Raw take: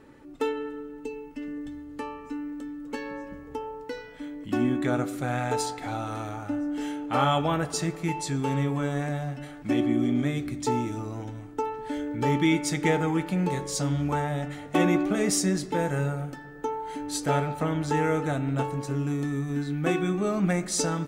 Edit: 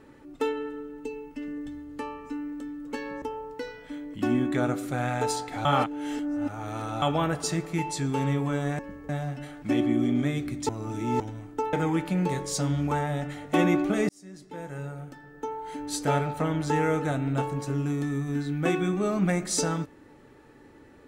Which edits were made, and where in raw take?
3.22–3.52 s: move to 9.09 s
5.95–7.32 s: reverse
10.69–11.20 s: reverse
11.73–12.94 s: delete
15.30–17.32 s: fade in

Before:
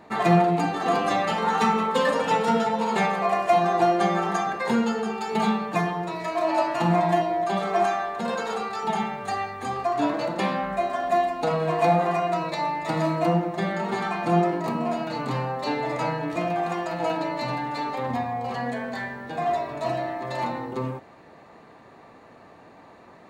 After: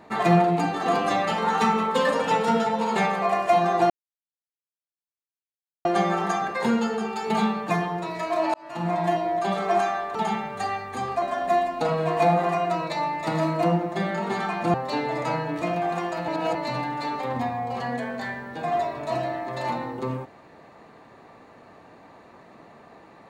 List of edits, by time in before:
3.90 s: insert silence 1.95 s
6.59–7.52 s: fade in equal-power
8.20–8.83 s: delete
9.90–10.84 s: delete
14.36–15.48 s: delete
17.02–17.29 s: reverse

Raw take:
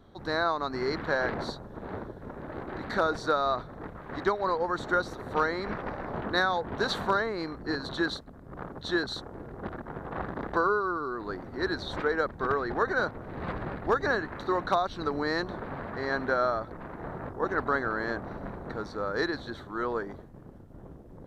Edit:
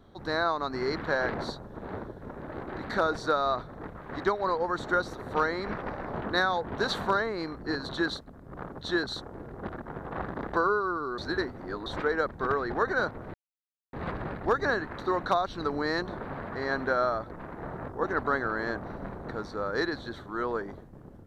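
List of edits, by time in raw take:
11.18–11.86 s: reverse
13.34 s: insert silence 0.59 s

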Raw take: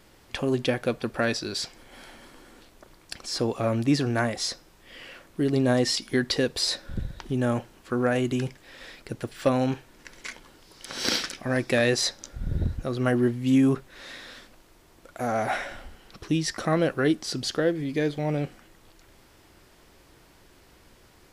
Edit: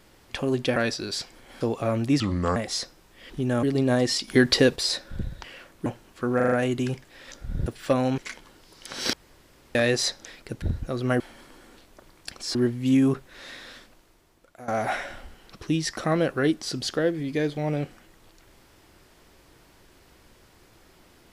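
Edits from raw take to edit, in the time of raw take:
0.76–1.19 s: delete
2.04–3.39 s: move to 13.16 s
3.98–4.25 s: speed 75%
4.99–5.41 s: swap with 7.22–7.55 s
6.06–6.54 s: gain +6 dB
8.05 s: stutter 0.04 s, 5 plays
8.85–9.22 s: swap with 12.24–12.58 s
9.74–10.17 s: delete
11.12–11.74 s: room tone
14.33–15.29 s: fade out, to -15.5 dB

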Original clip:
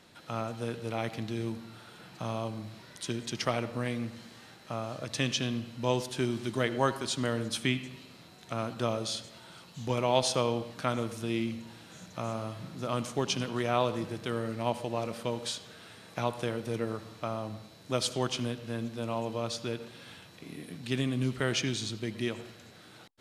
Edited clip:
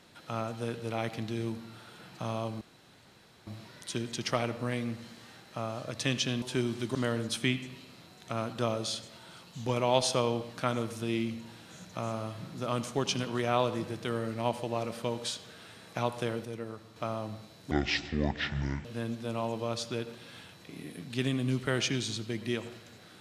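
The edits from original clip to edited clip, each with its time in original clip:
2.61 s: insert room tone 0.86 s
5.56–6.06 s: delete
6.59–7.16 s: delete
16.66–17.17 s: gain -6.5 dB
17.92–18.58 s: speed 58%

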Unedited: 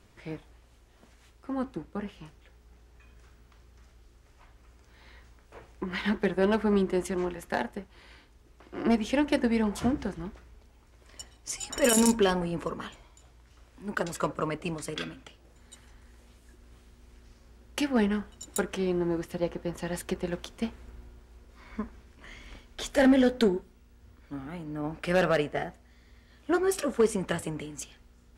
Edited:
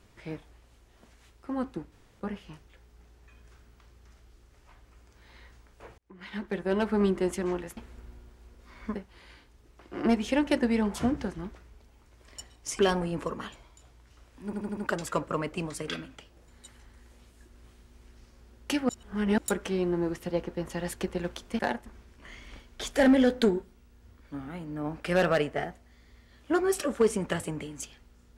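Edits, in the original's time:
1.92 s: insert room tone 0.28 s
5.70–6.75 s: fade in linear
7.49–7.76 s: swap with 20.67–21.85 s
11.60–12.19 s: delete
13.85 s: stutter 0.08 s, 5 plays
17.97–18.46 s: reverse

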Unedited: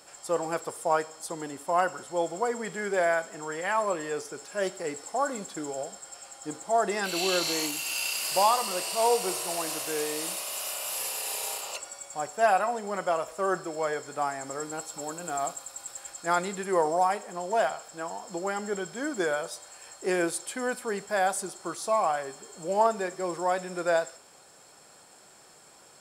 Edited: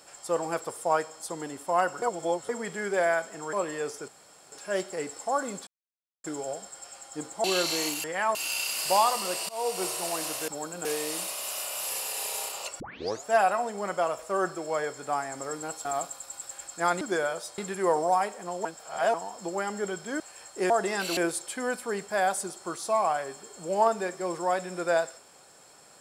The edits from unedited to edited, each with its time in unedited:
2.02–2.49 s: reverse
3.53–3.84 s: move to 7.81 s
4.39 s: insert room tone 0.44 s
5.54 s: insert silence 0.57 s
6.74–7.21 s: move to 20.16 s
8.95–9.31 s: fade in, from -20.5 dB
11.89 s: tape start 0.44 s
14.94–15.31 s: move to 9.94 s
17.54–18.03 s: reverse
19.09–19.66 s: move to 16.47 s

